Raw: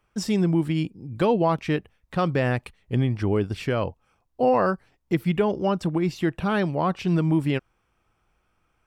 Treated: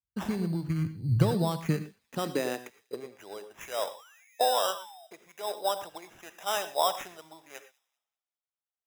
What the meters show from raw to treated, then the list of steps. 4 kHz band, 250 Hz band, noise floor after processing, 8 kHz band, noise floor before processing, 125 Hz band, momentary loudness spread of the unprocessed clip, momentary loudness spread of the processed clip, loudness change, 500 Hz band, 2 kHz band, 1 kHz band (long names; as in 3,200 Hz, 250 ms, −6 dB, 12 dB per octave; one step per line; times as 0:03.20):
+2.0 dB, −11.0 dB, below −85 dBFS, can't be measured, −71 dBFS, −6.5 dB, 7 LU, 21 LU, −6.0 dB, −8.0 dB, −8.5 dB, −4.0 dB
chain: dynamic equaliser 280 Hz, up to −4 dB, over −34 dBFS, Q 1.7
downward compressor 16 to 1, threshold −29 dBFS, peak gain reduction 13 dB
sound drawn into the spectrogram fall, 0:03.94–0:05.07, 630–3,600 Hz −49 dBFS
high-pass filter sweep 67 Hz → 680 Hz, 0:00.35–0:03.51
decimation without filtering 10×
delay with a high-pass on its return 194 ms, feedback 68%, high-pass 2,600 Hz, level −20.5 dB
reverb whose tail is shaped and stops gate 140 ms rising, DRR 9 dB
multiband upward and downward expander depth 100%